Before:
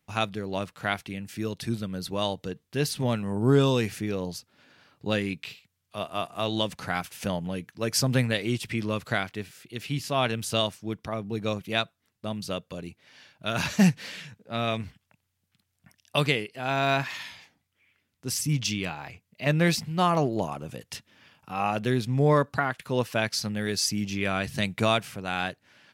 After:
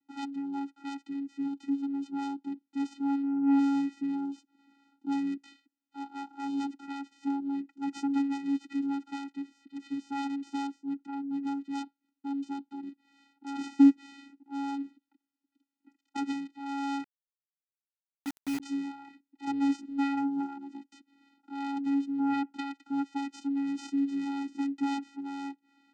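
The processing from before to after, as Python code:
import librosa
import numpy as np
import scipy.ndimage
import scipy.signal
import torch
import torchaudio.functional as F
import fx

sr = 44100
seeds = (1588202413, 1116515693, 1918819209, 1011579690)

y = fx.self_delay(x, sr, depth_ms=0.61)
y = fx.vocoder(y, sr, bands=8, carrier='square', carrier_hz=278.0)
y = fx.quant_dither(y, sr, seeds[0], bits=6, dither='none', at=(17.04, 18.6))
y = F.gain(torch.from_numpy(y), -2.0).numpy()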